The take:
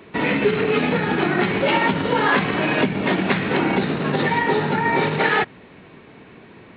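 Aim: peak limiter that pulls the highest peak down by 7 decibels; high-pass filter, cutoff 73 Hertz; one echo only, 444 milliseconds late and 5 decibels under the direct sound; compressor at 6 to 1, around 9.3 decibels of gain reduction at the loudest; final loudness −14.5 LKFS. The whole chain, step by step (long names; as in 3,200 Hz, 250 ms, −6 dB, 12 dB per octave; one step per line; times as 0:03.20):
high-pass filter 73 Hz
downward compressor 6 to 1, threshold −24 dBFS
brickwall limiter −19 dBFS
single-tap delay 444 ms −5 dB
level +13 dB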